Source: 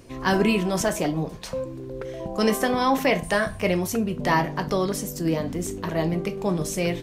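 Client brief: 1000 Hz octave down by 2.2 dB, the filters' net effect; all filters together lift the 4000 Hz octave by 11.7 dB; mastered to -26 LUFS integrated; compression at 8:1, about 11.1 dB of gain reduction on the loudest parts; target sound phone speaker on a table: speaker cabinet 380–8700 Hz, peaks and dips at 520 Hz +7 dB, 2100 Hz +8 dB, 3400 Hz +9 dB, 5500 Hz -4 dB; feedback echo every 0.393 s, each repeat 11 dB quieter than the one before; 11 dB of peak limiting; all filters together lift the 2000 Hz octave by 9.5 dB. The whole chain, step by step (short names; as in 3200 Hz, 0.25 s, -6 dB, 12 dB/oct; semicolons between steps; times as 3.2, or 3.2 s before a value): bell 1000 Hz -5 dB; bell 2000 Hz +5 dB; bell 4000 Hz +8 dB; compressor 8:1, threshold -27 dBFS; limiter -22.5 dBFS; speaker cabinet 380–8700 Hz, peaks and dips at 520 Hz +7 dB, 2100 Hz +8 dB, 3400 Hz +9 dB, 5500 Hz -4 dB; feedback echo 0.393 s, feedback 28%, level -11 dB; gain +5.5 dB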